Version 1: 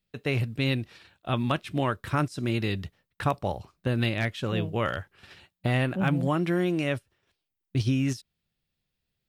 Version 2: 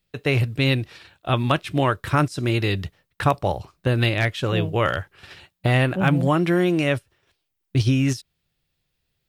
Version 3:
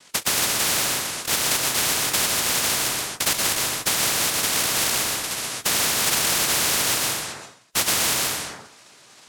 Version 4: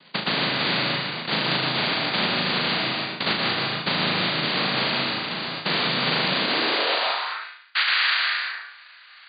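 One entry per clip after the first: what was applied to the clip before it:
parametric band 220 Hz −9 dB 0.29 octaves; level +7 dB
cochlear-implant simulation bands 1; dense smooth reverb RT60 0.53 s, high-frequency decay 0.7×, pre-delay 110 ms, DRR 2.5 dB; every bin compressed towards the loudest bin 4 to 1; level −4 dB
linear-phase brick-wall low-pass 4,800 Hz; on a send: flutter between parallel walls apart 6.4 metres, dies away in 0.48 s; on the sum: high-pass filter sweep 170 Hz → 1,600 Hz, 0:06.33–0:07.52

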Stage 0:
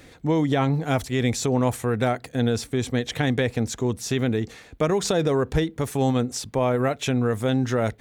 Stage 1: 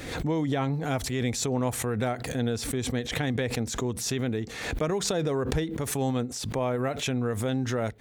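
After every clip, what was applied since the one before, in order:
background raised ahead of every attack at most 52 dB per second
level −6 dB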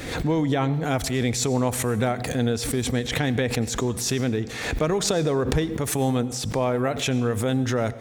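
convolution reverb RT60 0.95 s, pre-delay 85 ms, DRR 16 dB
level +4.5 dB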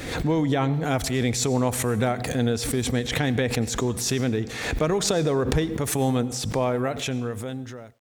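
fade-out on the ending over 1.42 s
bit-depth reduction 12 bits, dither none

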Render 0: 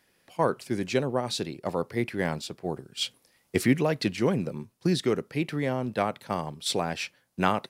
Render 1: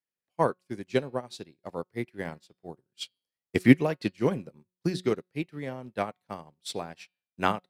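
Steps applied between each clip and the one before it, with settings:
hum removal 182.3 Hz, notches 28
expander for the loud parts 2.5 to 1, over −43 dBFS
level +7 dB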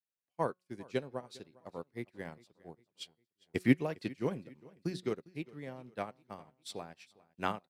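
repeating echo 404 ms, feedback 43%, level −22.5 dB
level −8.5 dB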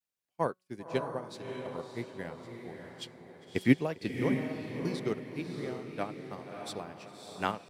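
feedback delay with all-pass diffusion 618 ms, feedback 41%, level −5 dB
pitch vibrato 0.32 Hz 21 cents
level +2.5 dB

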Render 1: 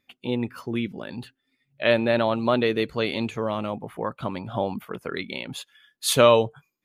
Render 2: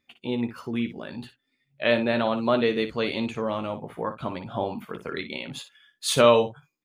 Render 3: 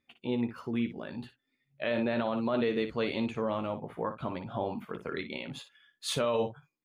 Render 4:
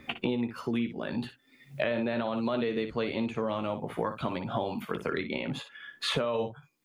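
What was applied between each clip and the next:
parametric band 12,000 Hz −14.5 dB 0.23 octaves; ambience of single reflections 13 ms −8.5 dB, 59 ms −11 dB; level −2 dB
high-shelf EQ 3,700 Hz −8 dB; brickwall limiter −17 dBFS, peak gain reduction 11.5 dB; level −3 dB
multiband upward and downward compressor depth 100%

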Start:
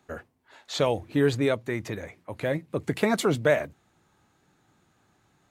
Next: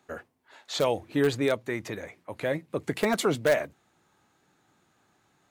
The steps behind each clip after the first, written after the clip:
low-shelf EQ 140 Hz −10 dB
in parallel at −11.5 dB: wrap-around overflow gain 14 dB
on the sum: level −2 dB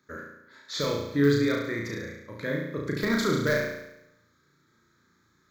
phaser with its sweep stopped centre 2,800 Hz, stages 6
on a send: flutter between parallel walls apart 6 metres, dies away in 0.85 s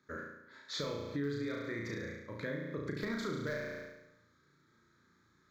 high-shelf EQ 9,100 Hz −12 dB
downward compressor 4 to 1, threshold −33 dBFS, peak gain reduction 13.5 dB
level −3 dB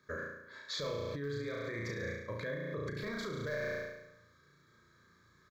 brickwall limiter −34 dBFS, peak gain reduction 9 dB
comb filter 1.8 ms, depth 48%
level +3.5 dB

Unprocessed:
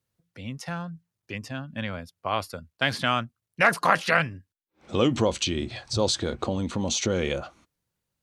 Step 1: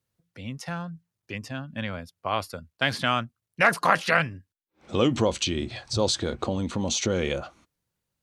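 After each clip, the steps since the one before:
no processing that can be heard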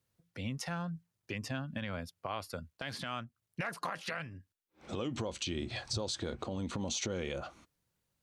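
downward compressor 8 to 1, threshold −32 dBFS, peak gain reduction 17.5 dB
brickwall limiter −25 dBFS, peak gain reduction 11 dB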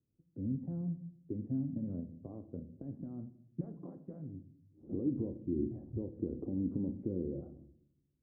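transistor ladder low-pass 370 Hz, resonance 50%
convolution reverb RT60 0.70 s, pre-delay 7 ms, DRR 9 dB
level +8 dB

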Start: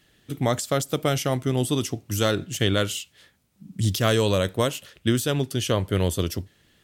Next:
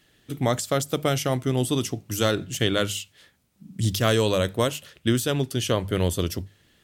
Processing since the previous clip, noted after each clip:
mains-hum notches 50/100/150/200 Hz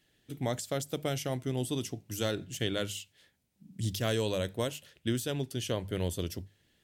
parametric band 1,200 Hz −7 dB 0.41 octaves
level −9 dB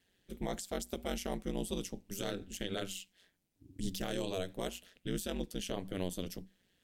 brickwall limiter −22 dBFS, peak gain reduction 6 dB
ring modulation 92 Hz
level −1 dB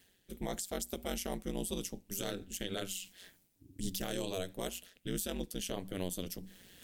high-shelf EQ 7,400 Hz +10 dB
reversed playback
upward compression, threshold −42 dBFS
reversed playback
level −1 dB

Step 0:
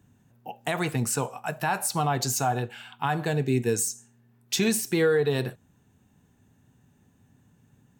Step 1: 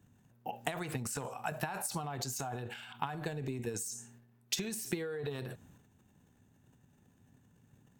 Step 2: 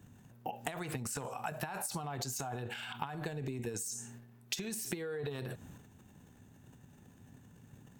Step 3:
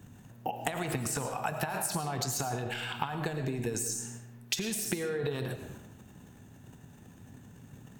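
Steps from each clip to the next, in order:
downward compressor 10 to 1, threshold −30 dBFS, peak gain reduction 12 dB; transient designer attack +7 dB, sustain +11 dB; level −7 dB
downward compressor 3 to 1, threshold −46 dBFS, peak gain reduction 13 dB; level +7.5 dB
convolution reverb RT60 0.85 s, pre-delay 65 ms, DRR 7.5 dB; level +5.5 dB

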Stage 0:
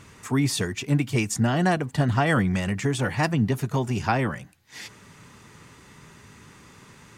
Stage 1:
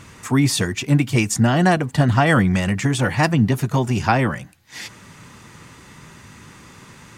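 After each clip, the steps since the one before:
notch filter 420 Hz, Q 12
level +6 dB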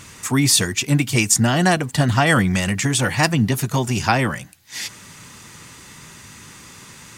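high-shelf EQ 2,900 Hz +11 dB
level −1.5 dB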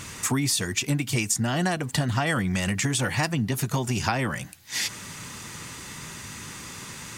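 downward compressor 6 to 1, threshold −25 dBFS, peak gain reduction 13 dB
level +2.5 dB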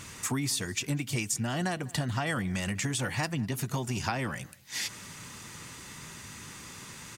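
slap from a distant wall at 34 metres, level −22 dB
level −6 dB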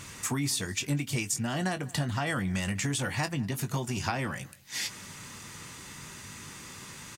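double-tracking delay 21 ms −11 dB

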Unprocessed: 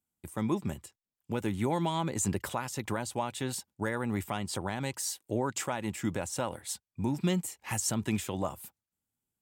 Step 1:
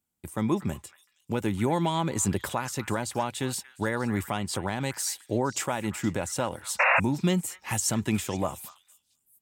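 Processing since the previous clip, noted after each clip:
echo through a band-pass that steps 234 ms, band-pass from 1,700 Hz, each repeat 1.4 octaves, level −11 dB
sound drawn into the spectrogram noise, 0:06.79–0:07.00, 500–2,800 Hz −25 dBFS
level +4 dB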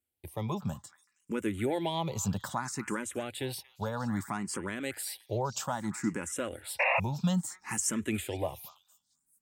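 frequency shifter mixed with the dry sound +0.61 Hz
level −2 dB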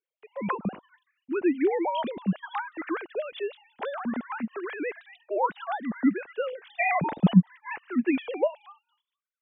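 three sine waves on the formant tracks
level +5.5 dB

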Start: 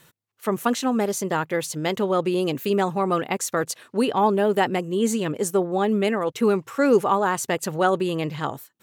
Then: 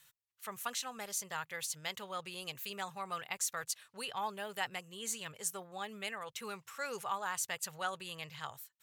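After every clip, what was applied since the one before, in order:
guitar amp tone stack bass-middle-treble 10-0-10
level −6 dB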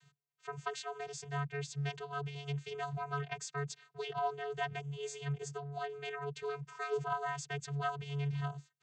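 channel vocoder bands 16, square 142 Hz
level +3.5 dB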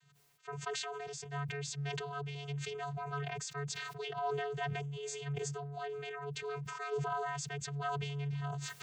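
level that may fall only so fast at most 21 dB per second
level −2.5 dB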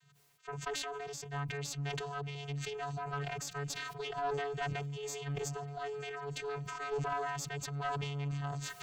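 feedback echo with a long and a short gap by turns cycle 1,234 ms, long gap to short 3 to 1, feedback 58%, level −22 dB
harmonic generator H 2 −14 dB, 5 −32 dB, 6 −26 dB, 8 −34 dB, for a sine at −25 dBFS

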